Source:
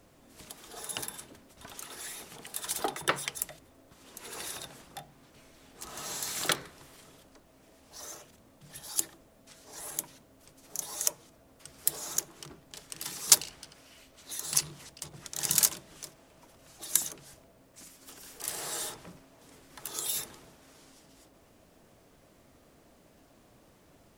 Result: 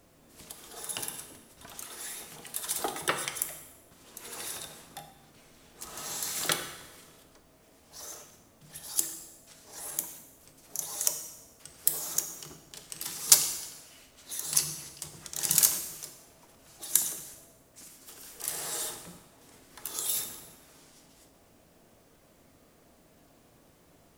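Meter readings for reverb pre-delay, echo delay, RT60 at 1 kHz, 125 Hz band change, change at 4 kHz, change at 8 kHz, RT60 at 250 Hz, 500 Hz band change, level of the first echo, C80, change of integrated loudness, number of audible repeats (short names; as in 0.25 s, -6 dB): 5 ms, none, 1.1 s, -0.5 dB, +0.5 dB, +2.0 dB, 1.1 s, -0.5 dB, none, 10.5 dB, +1.5 dB, none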